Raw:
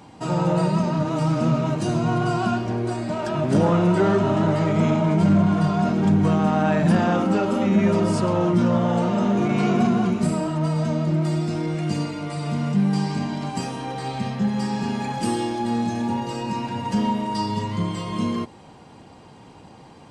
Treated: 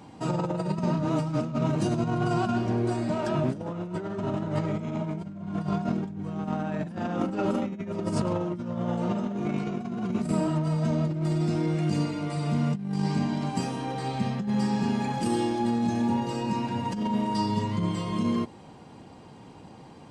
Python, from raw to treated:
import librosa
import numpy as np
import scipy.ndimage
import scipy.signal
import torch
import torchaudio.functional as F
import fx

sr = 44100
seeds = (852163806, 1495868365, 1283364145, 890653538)

y = fx.peak_eq(x, sr, hz=220.0, db=3.5, octaves=2.4)
y = fx.over_compress(y, sr, threshold_db=-20.0, ratio=-0.5)
y = y * 10.0 ** (-6.5 / 20.0)